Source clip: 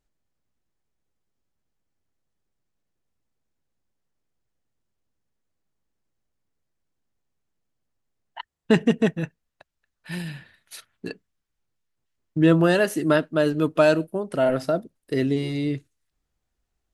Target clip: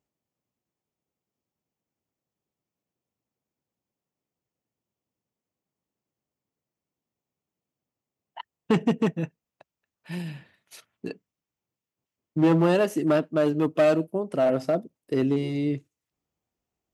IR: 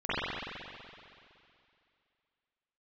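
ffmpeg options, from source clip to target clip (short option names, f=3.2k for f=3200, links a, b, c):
-af "equalizer=f=1.6k:t=o:w=0.67:g=-8,equalizer=f=4k:t=o:w=0.67:g=-7,equalizer=f=10k:t=o:w=0.67:g=-9,aeval=exprs='clip(val(0),-1,0.15)':c=same,highpass=120"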